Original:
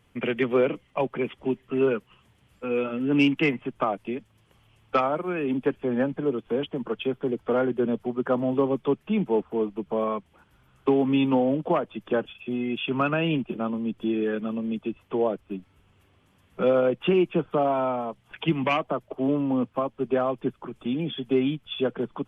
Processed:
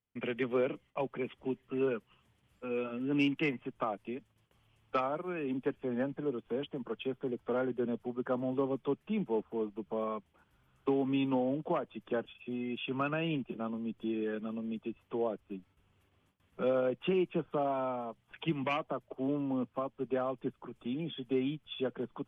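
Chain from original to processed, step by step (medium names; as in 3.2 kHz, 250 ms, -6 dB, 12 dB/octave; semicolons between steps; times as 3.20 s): gate with hold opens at -52 dBFS; trim -9 dB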